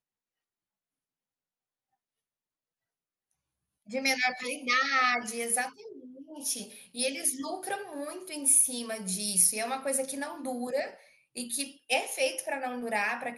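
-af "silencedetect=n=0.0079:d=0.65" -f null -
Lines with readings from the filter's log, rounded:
silence_start: 0.00
silence_end: 3.89 | silence_duration: 3.89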